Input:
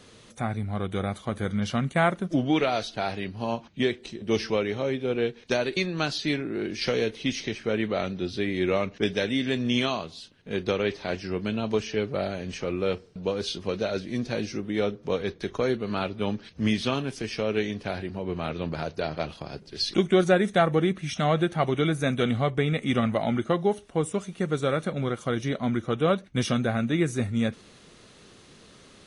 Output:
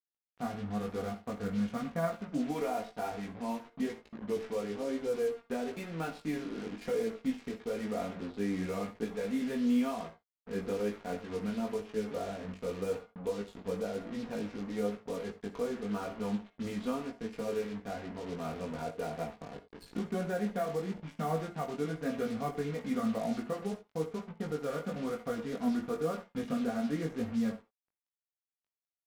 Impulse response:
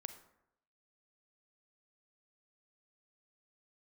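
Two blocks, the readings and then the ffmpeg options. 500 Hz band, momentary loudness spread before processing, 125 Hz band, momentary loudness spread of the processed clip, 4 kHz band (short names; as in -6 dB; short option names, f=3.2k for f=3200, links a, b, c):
-8.5 dB, 7 LU, -12.5 dB, 7 LU, -17.5 dB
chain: -filter_complex "[0:a]lowpass=1.4k,aecho=1:1:4.2:0.75,alimiter=limit=-15.5dB:level=0:latency=1:release=465,asplit=2[a][b];[b]adelay=120,highpass=300,lowpass=3.4k,asoftclip=type=hard:threshold=-25dB,volume=-15dB[c];[a][c]amix=inputs=2:normalize=0,acrusher=bits=5:mix=0:aa=0.5[d];[1:a]atrim=start_sample=2205,atrim=end_sample=3969[e];[d][e]afir=irnorm=-1:irlink=0,flanger=delay=18:depth=2.8:speed=0.99,volume=-1.5dB"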